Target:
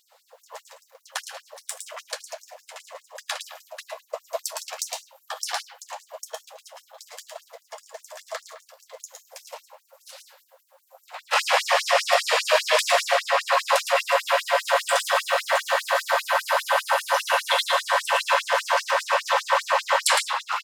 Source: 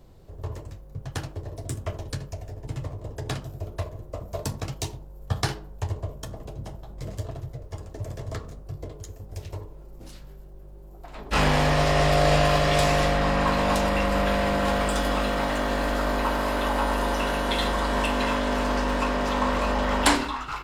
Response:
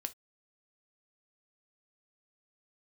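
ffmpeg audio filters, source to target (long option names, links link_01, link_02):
-filter_complex "[0:a]asettb=1/sr,asplit=3[link_01][link_02][link_03];[link_01]atrim=end=12.204[link_04];[link_02]atrim=start=12.2:end=12.78,asetpts=PTS-STARTPTS,afade=type=in:duration=0.004:curve=qsin,afade=type=out:start_time=0.576:duration=0.004:curve=qsin,afreqshift=-81[link_05];[link_03]atrim=start=12.776[link_06];[link_04][link_05]acrossfade=duration=0.004:curve1=hsin:curve2=qsin[link_07];[link_07][link_06]acrossfade=duration=0.004:curve1=qsin:curve2=hsin,asplit=2[link_08][link_09];[link_09]alimiter=limit=-14.5dB:level=0:latency=1:release=446,volume=0.5dB[link_10];[link_08][link_10]amix=inputs=2:normalize=0,asplit=2[link_11][link_12];[link_12]adelay=100,highpass=300,lowpass=3400,asoftclip=type=hard:threshold=-12.5dB,volume=-8dB[link_13];[link_11][link_13]amix=inputs=2:normalize=0,asplit=2[link_14][link_15];[1:a]atrim=start_sample=2205,adelay=111[link_16];[link_15][link_16]afir=irnorm=-1:irlink=0,volume=-4dB[link_17];[link_14][link_17]amix=inputs=2:normalize=0,afftfilt=real='re*gte(b*sr/1024,440*pow(5400/440,0.5+0.5*sin(2*PI*5*pts/sr)))':imag='im*gte(b*sr/1024,440*pow(5400/440,0.5+0.5*sin(2*PI*5*pts/sr)))':win_size=1024:overlap=0.75"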